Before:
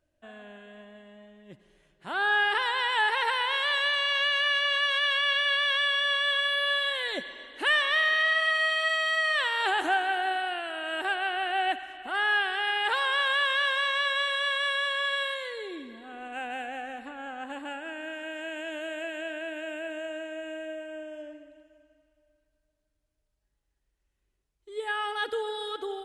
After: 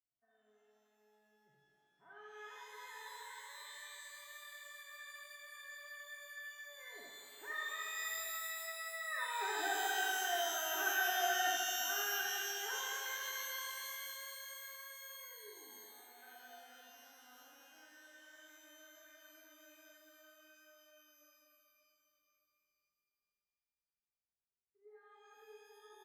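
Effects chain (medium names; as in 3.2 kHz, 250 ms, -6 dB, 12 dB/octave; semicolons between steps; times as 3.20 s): Doppler pass-by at 10.67 s, 9 m/s, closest 7.6 m; elliptic low-pass 2.1 kHz, stop band 40 dB; feedback comb 140 Hz, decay 0.15 s, harmonics odd, mix 90%; on a send: multi-tap echo 64/80 ms -4/-5 dB; on the sum: pitch-shifted reverb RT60 2.8 s, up +12 st, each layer -2 dB, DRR 1.5 dB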